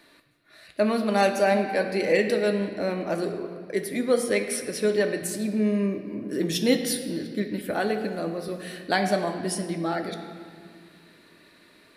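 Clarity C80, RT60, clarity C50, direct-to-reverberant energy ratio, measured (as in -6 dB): 8.5 dB, 2.0 s, 7.5 dB, 4.5 dB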